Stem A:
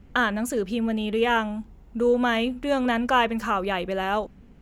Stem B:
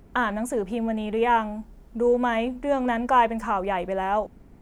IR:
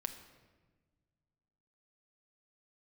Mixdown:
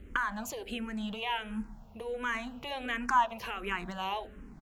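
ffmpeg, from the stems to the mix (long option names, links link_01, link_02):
-filter_complex "[0:a]acompressor=threshold=-28dB:ratio=6,volume=0.5dB,asplit=2[link_01][link_02];[link_02]volume=-10dB[link_03];[1:a]volume=-1,adelay=0.3,volume=-5.5dB[link_04];[2:a]atrim=start_sample=2205[link_05];[link_03][link_05]afir=irnorm=-1:irlink=0[link_06];[link_01][link_04][link_06]amix=inputs=3:normalize=0,asplit=2[link_07][link_08];[link_08]afreqshift=-1.4[link_09];[link_07][link_09]amix=inputs=2:normalize=1"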